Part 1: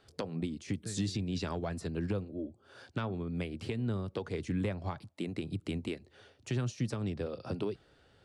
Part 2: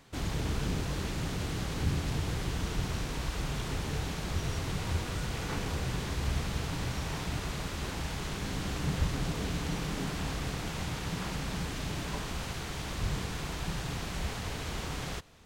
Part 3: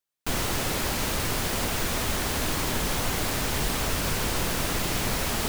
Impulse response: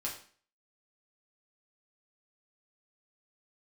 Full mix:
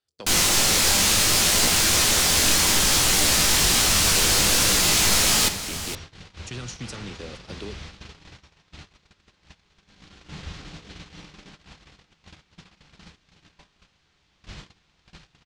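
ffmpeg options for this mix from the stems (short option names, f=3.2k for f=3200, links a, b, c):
-filter_complex "[0:a]volume=-4.5dB,asplit=3[a][b][c];[b]volume=-17.5dB[d];[c]volume=-16.5dB[e];[1:a]lowpass=3.9k,adelay=1450,volume=-12dB,asplit=3[f][g][h];[g]volume=-4dB[i];[h]volume=-12dB[j];[2:a]acontrast=76,flanger=delay=16.5:depth=7.8:speed=0.63,volume=-6dB,asplit=3[k][l][m];[l]volume=-5dB[n];[m]volume=-9.5dB[o];[3:a]atrim=start_sample=2205[p];[d][i][n]amix=inputs=3:normalize=0[q];[q][p]afir=irnorm=-1:irlink=0[r];[e][j][o]amix=inputs=3:normalize=0,aecho=0:1:467:1[s];[a][f][k][r][s]amix=inputs=5:normalize=0,agate=range=-24dB:threshold=-40dB:ratio=16:detection=peak,equalizer=f=6.4k:t=o:w=2.9:g=13.5"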